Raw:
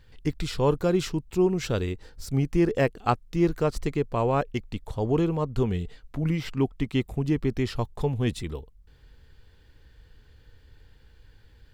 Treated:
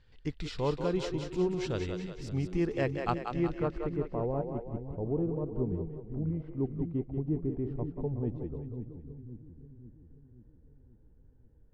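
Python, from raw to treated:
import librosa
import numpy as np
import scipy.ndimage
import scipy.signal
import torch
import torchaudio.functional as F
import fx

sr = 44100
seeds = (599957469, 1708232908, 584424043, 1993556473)

y = fx.filter_sweep_lowpass(x, sr, from_hz=5500.0, to_hz=560.0, start_s=3.12, end_s=4.31, q=0.87)
y = fx.echo_split(y, sr, split_hz=310.0, low_ms=531, high_ms=185, feedback_pct=52, wet_db=-6.0)
y = F.gain(torch.from_numpy(y), -8.0).numpy()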